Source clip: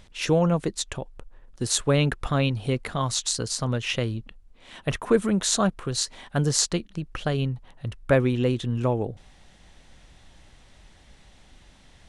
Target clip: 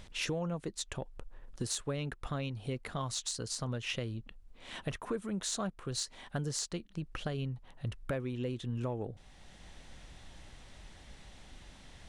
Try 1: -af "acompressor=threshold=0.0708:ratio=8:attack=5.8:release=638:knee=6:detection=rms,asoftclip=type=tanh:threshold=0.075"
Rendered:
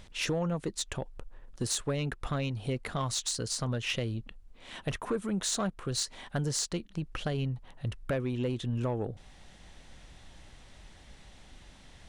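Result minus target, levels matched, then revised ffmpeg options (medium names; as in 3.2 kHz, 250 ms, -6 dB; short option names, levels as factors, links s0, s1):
compression: peak gain reduction -5.5 dB
-af "acompressor=threshold=0.0335:ratio=8:attack=5.8:release=638:knee=6:detection=rms,asoftclip=type=tanh:threshold=0.075"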